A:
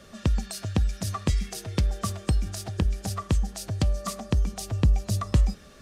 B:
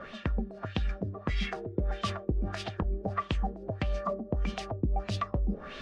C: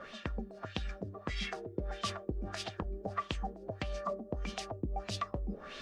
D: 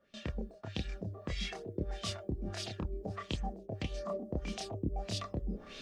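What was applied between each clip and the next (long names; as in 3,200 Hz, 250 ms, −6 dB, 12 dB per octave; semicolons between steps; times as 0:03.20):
parametric band 83 Hz −9 dB 2.4 octaves; reversed playback; downward compressor 5 to 1, threshold −37 dBFS, peak gain reduction 14.5 dB; reversed playback; auto-filter low-pass sine 1.6 Hz 340–3,300 Hz; level +8.5 dB
bass and treble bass −5 dB, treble +8 dB; level −4 dB
noise gate with hold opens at −38 dBFS; parametric band 1,200 Hz −9.5 dB 1.6 octaves; multi-voice chorus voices 2, 0.58 Hz, delay 28 ms, depth 1 ms; level +5 dB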